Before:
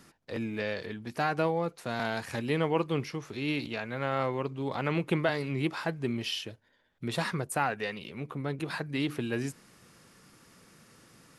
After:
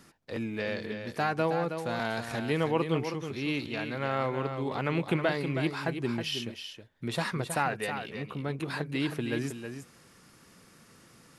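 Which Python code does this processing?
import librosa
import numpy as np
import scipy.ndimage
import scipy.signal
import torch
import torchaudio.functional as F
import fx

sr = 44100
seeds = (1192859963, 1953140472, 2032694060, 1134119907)

y = x + 10.0 ** (-8.0 / 20.0) * np.pad(x, (int(319 * sr / 1000.0), 0))[:len(x)]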